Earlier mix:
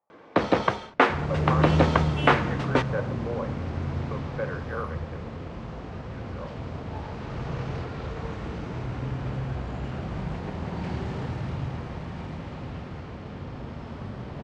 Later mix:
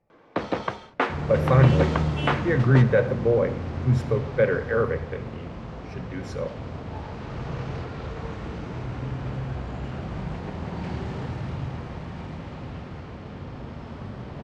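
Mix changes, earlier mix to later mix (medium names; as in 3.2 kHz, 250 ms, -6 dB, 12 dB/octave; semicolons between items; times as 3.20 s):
speech: remove band-pass filter 1 kHz, Q 2.6; first sound -5.0 dB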